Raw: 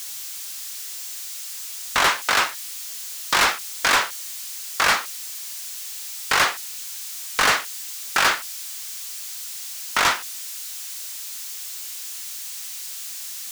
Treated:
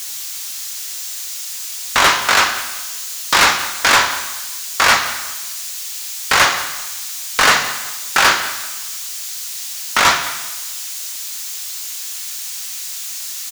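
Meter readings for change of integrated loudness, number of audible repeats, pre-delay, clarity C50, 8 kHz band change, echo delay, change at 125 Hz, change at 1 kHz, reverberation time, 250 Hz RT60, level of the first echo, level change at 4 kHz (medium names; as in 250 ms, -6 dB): +6.5 dB, 2, 3 ms, 8.5 dB, +7.0 dB, 192 ms, +8.0 dB, +6.5 dB, 1.1 s, 1.1 s, -17.5 dB, +7.0 dB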